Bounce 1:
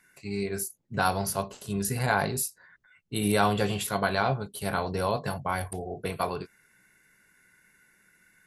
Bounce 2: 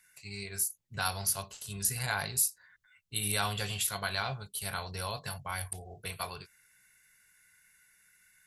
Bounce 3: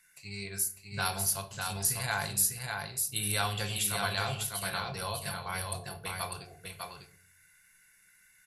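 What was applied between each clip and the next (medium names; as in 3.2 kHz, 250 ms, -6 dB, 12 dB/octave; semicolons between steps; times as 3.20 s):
FFT filter 100 Hz 0 dB, 270 Hz -14 dB, 3.1 kHz +5 dB, 8.9 kHz +8 dB; trim -5 dB
delay 600 ms -4.5 dB; simulated room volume 710 m³, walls furnished, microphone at 0.8 m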